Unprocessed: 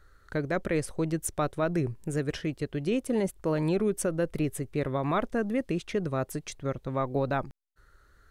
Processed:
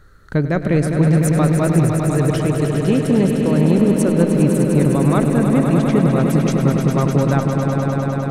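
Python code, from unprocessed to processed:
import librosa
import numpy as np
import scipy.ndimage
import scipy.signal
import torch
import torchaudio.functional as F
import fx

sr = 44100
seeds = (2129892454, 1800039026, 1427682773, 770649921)

p1 = fx.peak_eq(x, sr, hz=170.0, db=10.0, octaves=1.6)
p2 = fx.rider(p1, sr, range_db=10, speed_s=0.5)
p3 = p1 + (p2 * 10.0 ** (-0.5 / 20.0))
p4 = fx.echo_swell(p3, sr, ms=101, loudest=5, wet_db=-8.0)
y = fx.transformer_sat(p4, sr, knee_hz=210.0)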